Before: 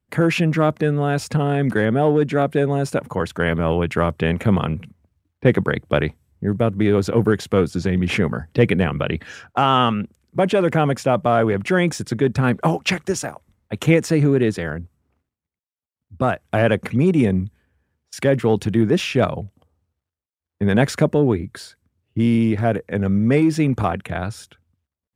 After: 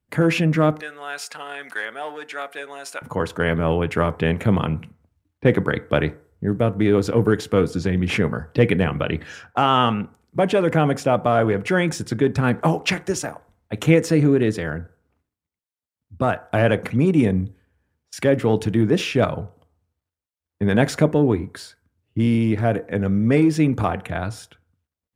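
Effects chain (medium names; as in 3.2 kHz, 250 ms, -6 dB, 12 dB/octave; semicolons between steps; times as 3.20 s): 0.80–3.02 s: high-pass 1.2 kHz 12 dB/octave; FDN reverb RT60 0.48 s, low-frequency decay 0.7×, high-frequency decay 0.4×, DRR 13 dB; trim -1 dB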